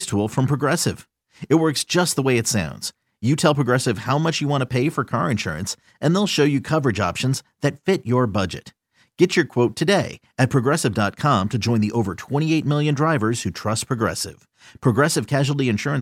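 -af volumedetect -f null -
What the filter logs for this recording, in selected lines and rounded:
mean_volume: -20.7 dB
max_volume: -2.5 dB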